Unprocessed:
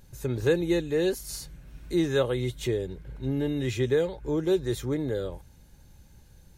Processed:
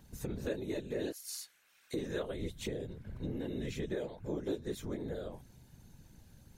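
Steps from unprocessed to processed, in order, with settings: 1.12–1.94 s: high-pass 1.4 kHz 12 dB/octave; compression 2.5:1, threshold -35 dBFS, peak gain reduction 11.5 dB; whisper effect; trim -3.5 dB

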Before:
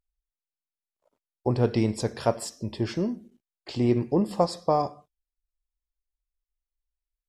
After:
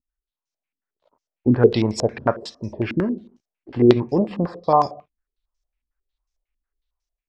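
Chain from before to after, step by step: level rider gain up to 9 dB; step-sequenced low-pass 11 Hz 270–5900 Hz; trim -3.5 dB

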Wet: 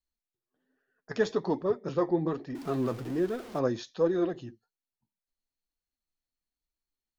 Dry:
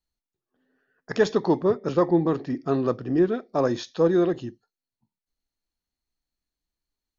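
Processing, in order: 2.55–3.59 s: jump at every zero crossing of -33.5 dBFS; flange 1.2 Hz, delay 1.5 ms, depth 7.9 ms, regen +44%; trim -3 dB

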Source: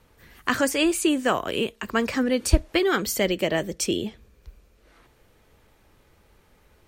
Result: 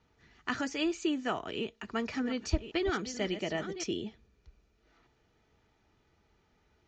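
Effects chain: 1.56–3.86 s: chunks repeated in reverse 577 ms, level -11 dB; steep low-pass 6.9 kHz 72 dB/octave; comb of notches 540 Hz; trim -9 dB

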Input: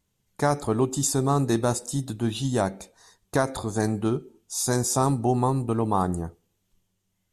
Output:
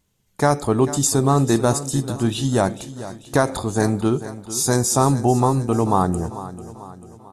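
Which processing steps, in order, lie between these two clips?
feedback delay 443 ms, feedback 49%, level -14.5 dB; trim +5.5 dB

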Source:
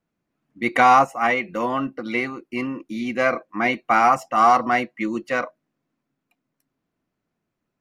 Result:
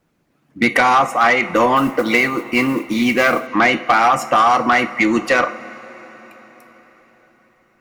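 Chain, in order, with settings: harmonic-percussive split harmonic -7 dB; in parallel at +2 dB: peak limiter -13 dBFS, peak gain reduction 6 dB; on the sum: compression 5:1, threshold -19 dBFS, peak gain reduction 10.5 dB; two-slope reverb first 0.41 s, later 5 s, from -18 dB, DRR 9.5 dB; 1.76–3.47 s: modulation noise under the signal 26 dB; Chebyshev shaper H 5 -18 dB, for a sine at -8 dBFS; trim +5.5 dB

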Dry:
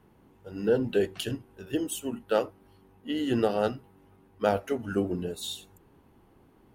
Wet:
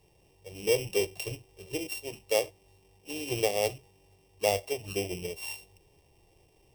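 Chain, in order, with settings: sorted samples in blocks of 16 samples; static phaser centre 590 Hz, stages 4

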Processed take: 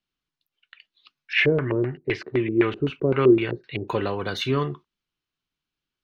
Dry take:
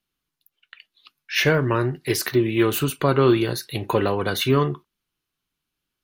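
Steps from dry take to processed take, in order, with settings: treble shelf 4 kHz +12 dB; 1.33–3.88 s: LFO low-pass square 3.9 Hz 410–2300 Hz; distance through air 170 m; trim -4.5 dB

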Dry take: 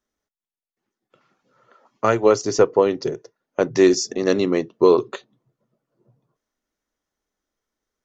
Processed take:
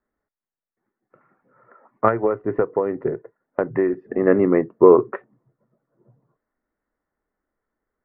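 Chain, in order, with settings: steep low-pass 2 kHz 48 dB/octave; 2.08–4.08 s: compression 6:1, threshold -20 dBFS, peak gain reduction 10.5 dB; trim +3 dB

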